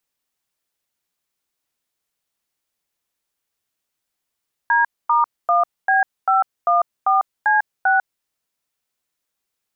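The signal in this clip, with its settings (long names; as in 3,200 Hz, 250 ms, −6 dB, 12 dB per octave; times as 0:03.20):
touch tones "D*1B514C6", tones 148 ms, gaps 246 ms, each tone −15.5 dBFS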